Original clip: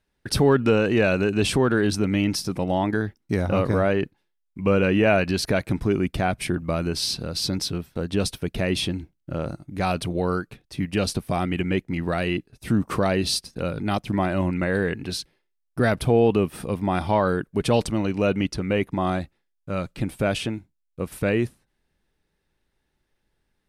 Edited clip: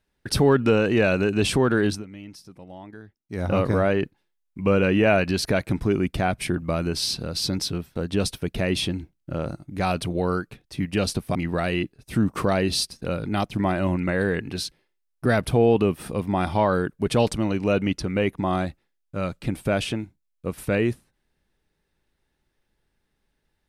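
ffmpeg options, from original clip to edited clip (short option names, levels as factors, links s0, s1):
-filter_complex "[0:a]asplit=4[s0][s1][s2][s3];[s0]atrim=end=2.04,asetpts=PTS-STARTPTS,afade=t=out:st=1.87:d=0.17:silence=0.11885[s4];[s1]atrim=start=2.04:end=3.3,asetpts=PTS-STARTPTS,volume=0.119[s5];[s2]atrim=start=3.3:end=11.352,asetpts=PTS-STARTPTS,afade=t=in:d=0.17:silence=0.11885[s6];[s3]atrim=start=11.888[s7];[s4][s5][s6]concat=n=3:v=0:a=1[s8];[s8][s7]acrossfade=d=0.004:c1=hsin:c2=hsin"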